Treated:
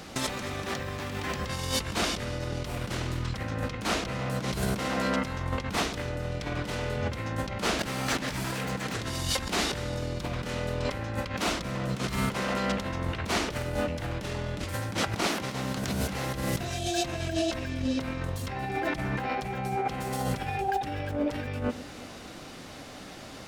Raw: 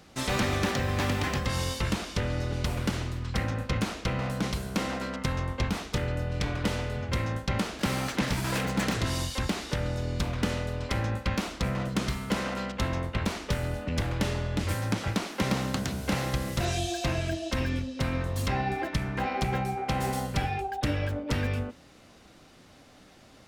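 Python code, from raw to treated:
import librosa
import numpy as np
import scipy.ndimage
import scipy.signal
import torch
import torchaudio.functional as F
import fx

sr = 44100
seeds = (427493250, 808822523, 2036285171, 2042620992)

p1 = fx.over_compress(x, sr, threshold_db=-36.0, ratio=-1.0)
p2 = fx.low_shelf(p1, sr, hz=140.0, db=-4.5)
p3 = p2 + fx.echo_alternate(p2, sr, ms=115, hz=880.0, feedback_pct=72, wet_db=-13.0, dry=0)
y = F.gain(torch.from_numpy(p3), 5.5).numpy()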